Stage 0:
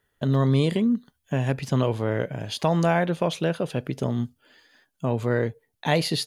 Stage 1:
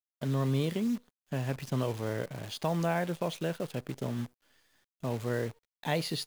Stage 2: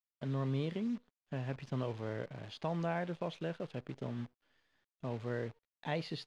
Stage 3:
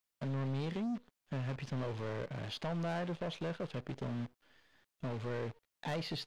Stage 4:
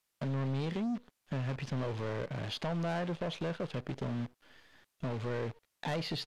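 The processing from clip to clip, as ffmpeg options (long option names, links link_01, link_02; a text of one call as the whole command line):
ffmpeg -i in.wav -af "acrusher=bits=7:dc=4:mix=0:aa=0.000001,volume=-8.5dB" out.wav
ffmpeg -i in.wav -af "lowpass=3800,volume=-6dB" out.wav
ffmpeg -i in.wav -filter_complex "[0:a]asplit=2[link_01][link_02];[link_02]acompressor=threshold=-43dB:ratio=6,volume=1dB[link_03];[link_01][link_03]amix=inputs=2:normalize=0,asoftclip=type=tanh:threshold=-34.5dB,volume=1.5dB" out.wav
ffmpeg -i in.wav -filter_complex "[0:a]aresample=32000,aresample=44100,asplit=2[link_01][link_02];[link_02]acompressor=threshold=-47dB:ratio=6,volume=2dB[link_03];[link_01][link_03]amix=inputs=2:normalize=0" out.wav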